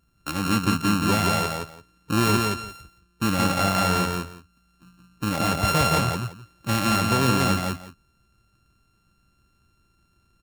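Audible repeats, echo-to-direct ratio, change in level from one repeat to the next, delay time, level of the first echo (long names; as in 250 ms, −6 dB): 2, −3.0 dB, −15.0 dB, 172 ms, −3.0 dB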